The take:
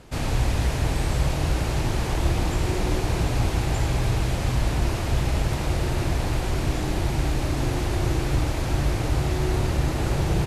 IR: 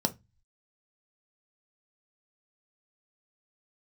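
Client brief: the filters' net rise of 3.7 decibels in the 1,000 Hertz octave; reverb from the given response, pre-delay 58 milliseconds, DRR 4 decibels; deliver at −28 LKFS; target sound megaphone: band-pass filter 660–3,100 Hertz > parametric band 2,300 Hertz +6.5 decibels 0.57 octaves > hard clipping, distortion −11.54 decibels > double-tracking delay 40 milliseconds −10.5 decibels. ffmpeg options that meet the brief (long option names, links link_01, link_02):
-filter_complex "[0:a]equalizer=frequency=1000:width_type=o:gain=6,asplit=2[link_01][link_02];[1:a]atrim=start_sample=2205,adelay=58[link_03];[link_02][link_03]afir=irnorm=-1:irlink=0,volume=-11dB[link_04];[link_01][link_04]amix=inputs=2:normalize=0,highpass=660,lowpass=3100,equalizer=frequency=2300:width_type=o:width=0.57:gain=6.5,asoftclip=type=hard:threshold=-27.5dB,asplit=2[link_05][link_06];[link_06]adelay=40,volume=-10.5dB[link_07];[link_05][link_07]amix=inputs=2:normalize=0,volume=2dB"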